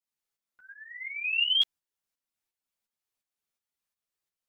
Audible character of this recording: tremolo saw up 2.8 Hz, depth 60%; a shimmering, thickened sound

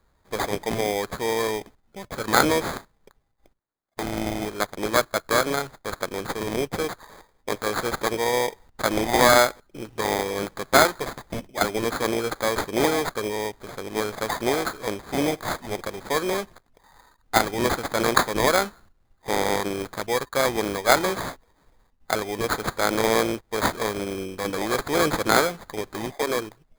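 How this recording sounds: aliases and images of a low sample rate 2800 Hz, jitter 0%

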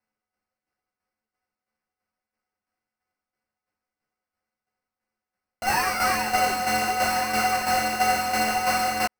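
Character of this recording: a buzz of ramps at a fixed pitch in blocks of 16 samples; tremolo saw down 3 Hz, depth 60%; aliases and images of a low sample rate 3500 Hz, jitter 0%; a shimmering, thickened sound

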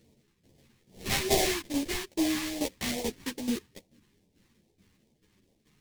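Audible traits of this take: aliases and images of a low sample rate 1400 Hz, jitter 20%; phasing stages 2, 2.4 Hz, lowest notch 590–1300 Hz; tremolo saw down 2.3 Hz, depth 75%; a shimmering, thickened sound

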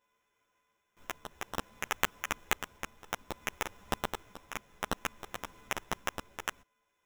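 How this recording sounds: a buzz of ramps at a fixed pitch in blocks of 8 samples; tremolo triangle 0.59 Hz, depth 45%; aliases and images of a low sample rate 4500 Hz, jitter 0%; a shimmering, thickened sound

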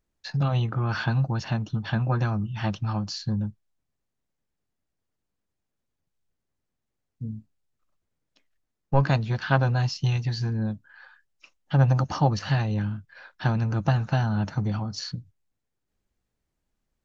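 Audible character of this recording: noise floor -82 dBFS; spectral tilt -6.5 dB/oct

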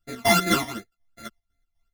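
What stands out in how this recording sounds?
a buzz of ramps at a fixed pitch in blocks of 64 samples; phasing stages 12, 2.7 Hz, lowest notch 440–1000 Hz; chopped level 4 Hz, depth 60%, duty 55%; a shimmering, thickened sound

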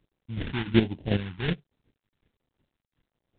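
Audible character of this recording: aliases and images of a low sample rate 1200 Hz, jitter 20%; phasing stages 2, 1.3 Hz, lowest notch 540–1400 Hz; chopped level 2.7 Hz, depth 65%, duty 15%; G.726

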